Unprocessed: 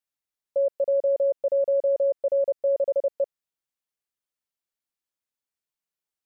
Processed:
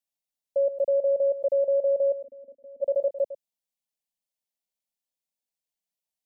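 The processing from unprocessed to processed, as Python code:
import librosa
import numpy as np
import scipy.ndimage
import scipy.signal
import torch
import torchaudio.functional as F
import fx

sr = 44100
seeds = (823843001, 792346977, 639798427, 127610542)

y = fx.formant_cascade(x, sr, vowel='i', at=(2.12, 2.81), fade=0.02)
y = fx.fixed_phaser(y, sr, hz=360.0, stages=6)
y = y + 10.0 ** (-13.0 / 20.0) * np.pad(y, (int(104 * sr / 1000.0), 0))[:len(y)]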